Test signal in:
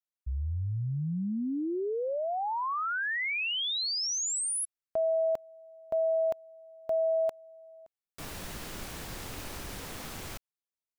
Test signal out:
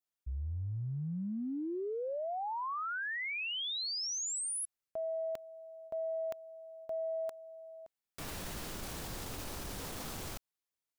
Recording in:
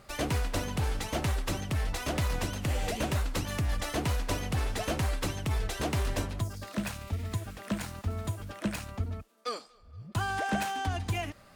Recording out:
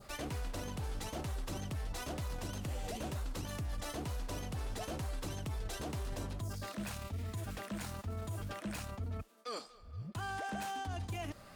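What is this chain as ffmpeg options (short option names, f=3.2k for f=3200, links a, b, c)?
-af "adynamicequalizer=threshold=0.00282:dfrequency=2100:dqfactor=1.2:tfrequency=2100:tqfactor=1.2:attack=5:release=100:ratio=0.375:range=2.5:mode=cutabove:tftype=bell,areverse,acompressor=threshold=-37dB:ratio=6:attack=0.64:release=72:knee=1:detection=rms,areverse,volume=1.5dB"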